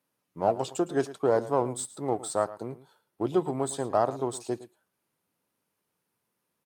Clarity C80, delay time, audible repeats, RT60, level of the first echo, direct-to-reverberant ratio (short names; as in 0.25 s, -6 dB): none, 0.111 s, 1, none, -16.5 dB, none